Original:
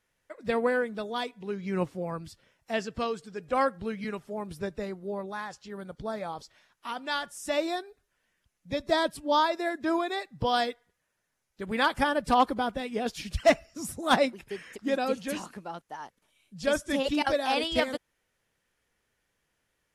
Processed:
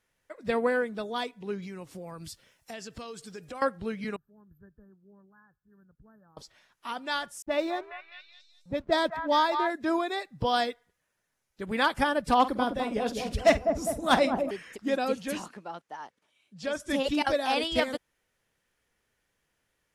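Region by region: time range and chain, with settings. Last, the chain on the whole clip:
1.62–3.62 s: treble shelf 3.7 kHz +10.5 dB + compression 8:1, threshold -37 dBFS
4.16–6.37 s: brick-wall FIR band-stop 1.8–12 kHz + amplifier tone stack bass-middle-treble 6-0-2
7.42–9.70 s: level-controlled noise filter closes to 460 Hz, open at -20.5 dBFS + hysteresis with a dead band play -48 dBFS + repeats whose band climbs or falls 203 ms, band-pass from 1.2 kHz, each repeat 0.7 oct, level -4 dB
12.39–14.51 s: doubling 49 ms -14 dB + feedback echo behind a low-pass 203 ms, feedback 58%, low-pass 830 Hz, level -4.5 dB
15.48–16.80 s: high-pass 230 Hz 6 dB/octave + compression 2:1, threshold -29 dBFS + distance through air 52 m
whole clip: none

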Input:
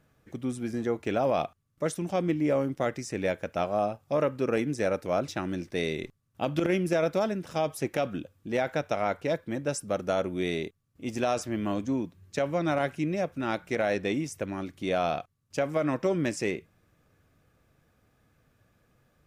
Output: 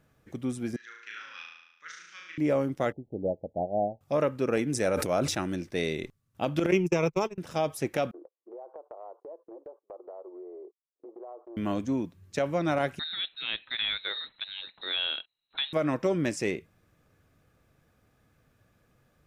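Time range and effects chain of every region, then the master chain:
0.76–2.38 s: elliptic band-pass 1.5–6.2 kHz + treble shelf 2.4 kHz -9 dB + flutter echo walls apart 6.2 m, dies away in 0.93 s
2.92–4.01 s: steep low-pass 830 Hz 96 dB/octave + upward expansion, over -42 dBFS
4.70–5.56 s: peaking EQ 9.5 kHz +6.5 dB 0.92 oct + decay stretcher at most 47 dB/s
6.71–7.38 s: gate -28 dBFS, range -37 dB + rippled EQ curve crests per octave 0.75, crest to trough 12 dB
8.11–11.57 s: Chebyshev band-pass 350–1100 Hz, order 4 + gate -51 dBFS, range -22 dB + compression 4:1, threshold -43 dBFS
12.99–15.73 s: bass shelf 440 Hz -11.5 dB + frequency inversion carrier 4 kHz
whole clip: none

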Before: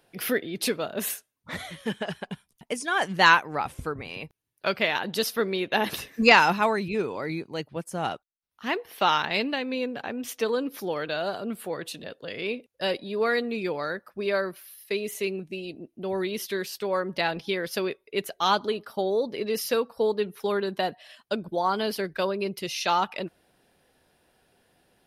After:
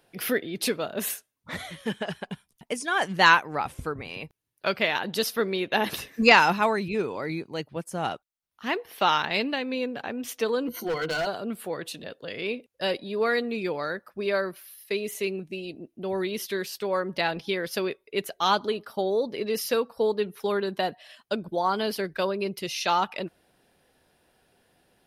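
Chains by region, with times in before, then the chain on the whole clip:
10.67–11.27 s: rippled EQ curve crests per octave 1.9, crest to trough 18 dB + overload inside the chain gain 24 dB
whole clip: none

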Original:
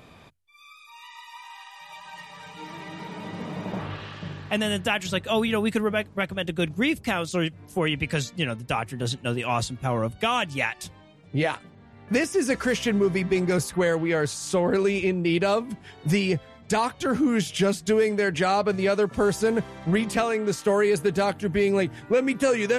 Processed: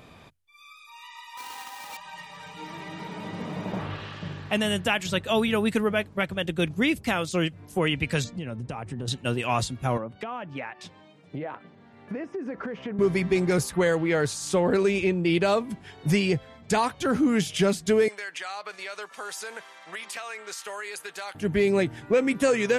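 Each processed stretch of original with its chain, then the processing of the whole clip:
1.37–1.97 s: square wave that keeps the level + high-pass 180 Hz 6 dB/octave + comb 3.9 ms, depth 56%
8.24–9.08 s: steep low-pass 9.6 kHz 48 dB/octave + tilt shelf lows +6 dB, about 1.2 kHz + compression 12:1, threshold -29 dBFS
9.97–12.99 s: high-pass 170 Hz + low-pass that closes with the level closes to 1.3 kHz, closed at -23 dBFS + compression 10:1, threshold -29 dBFS
18.08–21.35 s: high-pass 1.1 kHz + compression 4:1, threshold -32 dBFS
whole clip: none

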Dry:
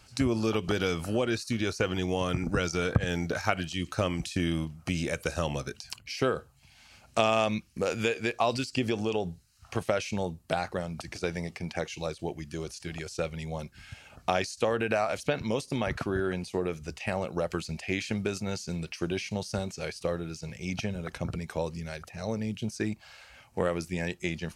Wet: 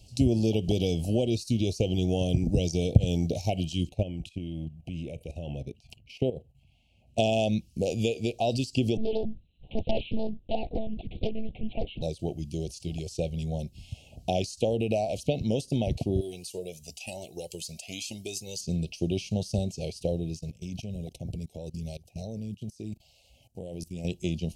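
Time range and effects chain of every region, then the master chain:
3.89–7.18 s: level held to a coarse grid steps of 13 dB + resonant high shelf 3.5 kHz -11 dB, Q 1.5
8.97–12.02 s: monotone LPC vocoder at 8 kHz 220 Hz + loudspeaker Doppler distortion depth 0.78 ms
16.21–18.61 s: RIAA curve recording + Shepard-style flanger rising 1 Hz
20.39–24.05 s: level held to a coarse grid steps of 20 dB + treble shelf 10 kHz +9 dB
whole clip: Chebyshev band-stop 710–2800 Hz, order 3; bass shelf 220 Hz +8.5 dB

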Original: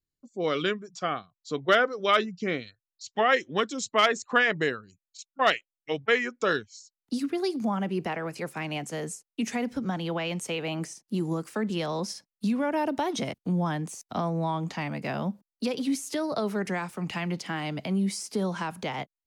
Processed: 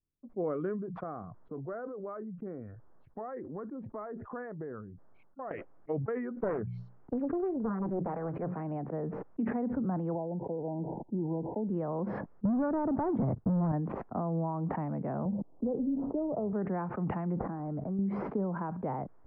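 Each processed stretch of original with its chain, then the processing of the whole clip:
1.03–5.51 s: low-pass 1.9 kHz 24 dB/octave + compression 3:1, threshold -39 dBFS
6.36–8.60 s: hum notches 60/120/180 Hz + loudspeaker Doppler distortion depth 0.95 ms
10.15–11.69 s: brick-wall FIR low-pass 1 kHz + tilt shelf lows -4 dB, about 760 Hz
12.45–13.72 s: low-pass 2.2 kHz + peaking EQ 110 Hz +11.5 dB 1.3 oct + waveshaping leveller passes 3
15.25–16.53 s: inverse Chebyshev low-pass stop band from 3.6 kHz, stop band 70 dB + AM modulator 290 Hz, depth 10% + three bands compressed up and down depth 40%
17.37–17.99 s: median filter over 15 samples + compression 3:1, threshold -32 dBFS + decimation joined by straight lines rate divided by 8×
whole clip: compression 6:1, threshold -28 dBFS; Bessel low-pass 810 Hz, order 6; decay stretcher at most 34 dB/s

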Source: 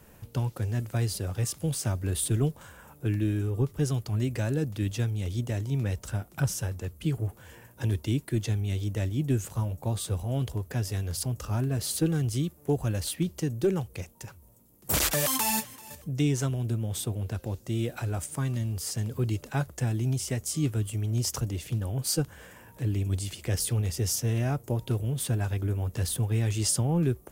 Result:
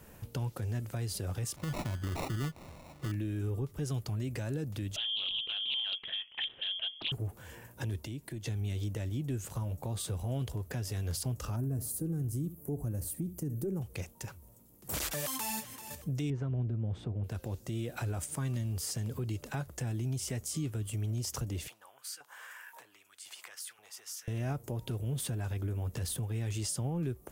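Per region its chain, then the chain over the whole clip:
1.56–3.12 s: sample-rate reducer 1.6 kHz + peaking EQ 440 Hz -8 dB 0.21 oct
4.96–7.12 s: frequency inversion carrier 3.3 kHz + loudspeaker Doppler distortion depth 0.34 ms
8.05–8.46 s: band-stop 1.3 kHz, Q 5.9 + compression 3:1, threshold -41 dBFS
11.56–13.82 s: FFT filter 280 Hz 0 dB, 1.4 kHz -13 dB, 3.4 kHz -24 dB, 12 kHz +1 dB + flutter echo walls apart 11.5 m, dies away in 0.25 s + tape noise reduction on one side only encoder only
16.30–17.24 s: low-pass 1.9 kHz + bass shelf 390 Hz +6.5 dB
21.68–24.28 s: compression 2.5:1, threshold -46 dBFS + LFO high-pass saw up 1.9 Hz 820–1700 Hz
whole clip: compression, threshold -30 dBFS; peak limiter -27 dBFS

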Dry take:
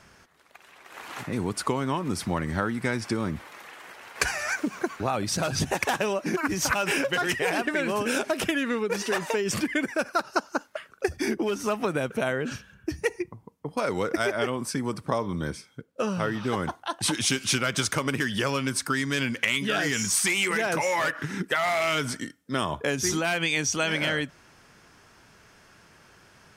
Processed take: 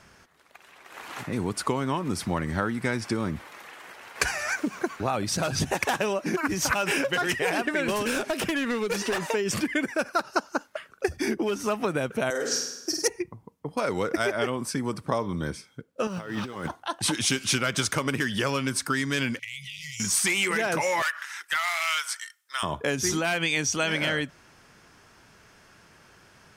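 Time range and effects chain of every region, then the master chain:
7.88–9.27 s: overload inside the chain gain 23 dB + three bands compressed up and down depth 100%
12.30–13.08 s: Chebyshev high-pass 420 Hz + resonant high shelf 3.8 kHz +11.5 dB, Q 3 + flutter echo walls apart 8.6 m, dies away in 0.82 s
16.07–16.70 s: companding laws mixed up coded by mu + bass shelf 84 Hz -11.5 dB + compressor with a negative ratio -32 dBFS, ratio -0.5
19.39–20.00 s: brick-wall FIR band-stop 160–1900 Hz + compression 3:1, threshold -37 dBFS
21.02–22.63 s: high-pass 1 kHz 24 dB/octave + treble shelf 4.8 kHz +4.5 dB + overload inside the chain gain 17 dB
whole clip: none

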